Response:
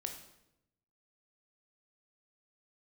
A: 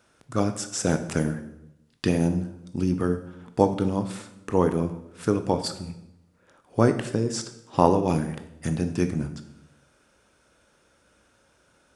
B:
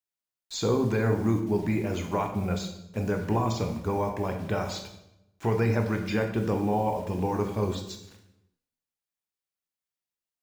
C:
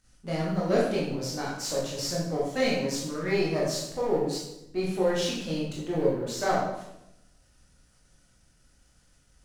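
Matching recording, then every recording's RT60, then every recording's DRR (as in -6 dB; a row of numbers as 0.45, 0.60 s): B; 0.85, 0.85, 0.85 s; 8.5, 4.0, -5.5 dB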